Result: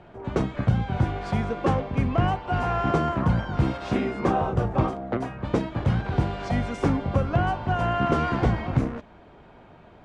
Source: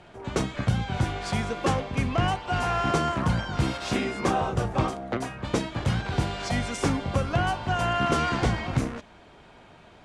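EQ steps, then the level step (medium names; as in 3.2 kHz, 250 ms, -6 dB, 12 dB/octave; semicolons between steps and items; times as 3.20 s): low-pass 1.1 kHz 6 dB/octave; +3.0 dB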